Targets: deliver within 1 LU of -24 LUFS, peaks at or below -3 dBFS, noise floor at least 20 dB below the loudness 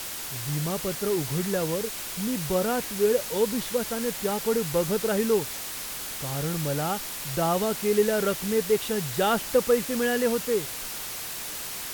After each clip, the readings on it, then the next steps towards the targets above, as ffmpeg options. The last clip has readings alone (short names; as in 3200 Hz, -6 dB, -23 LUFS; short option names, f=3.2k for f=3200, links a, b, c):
noise floor -35 dBFS; noise floor target -47 dBFS; loudness -26.5 LUFS; peak -10.0 dBFS; loudness target -24.0 LUFS
-> -af "afftdn=nr=12:nf=-35"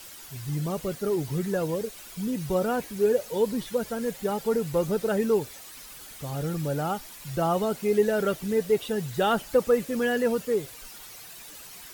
noise floor -45 dBFS; noise floor target -47 dBFS
-> -af "afftdn=nr=6:nf=-45"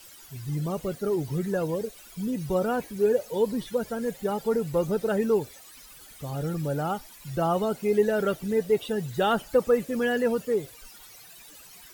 noise floor -49 dBFS; loudness -27.0 LUFS; peak -11.5 dBFS; loudness target -24.0 LUFS
-> -af "volume=3dB"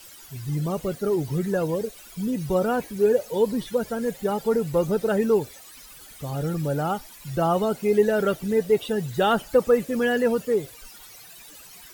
loudness -24.0 LUFS; peak -8.5 dBFS; noise floor -46 dBFS